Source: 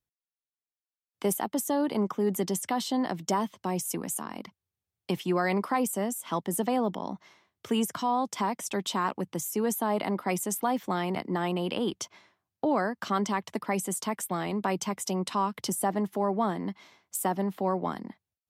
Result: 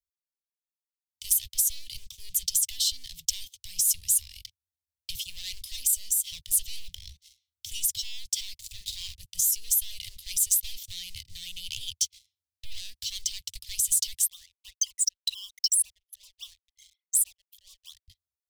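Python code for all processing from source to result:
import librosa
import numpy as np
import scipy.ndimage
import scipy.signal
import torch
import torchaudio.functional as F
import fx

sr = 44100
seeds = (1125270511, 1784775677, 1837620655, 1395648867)

y = fx.chain(x, sr, fx.median_filter(points=15),
    fx.doubler(ms=48.0, db=-7.5),
    fx.resample_linear(factor=2), at=(8.58, 9.15))
y = fx.chain(y, sr, fx.envelope_sharpen(power=3.0),
    fx.highpass(hz=1000.0, slope=24), at=(14.26, 18.08))
y = fx.leveller(y, sr, passes=3)
y = scipy.signal.sosfilt(scipy.signal.cheby2(4, 50, [190.0, 1500.0], 'bandstop', fs=sr, output='sos'), y)
y = F.gain(torch.from_numpy(y), 1.5).numpy()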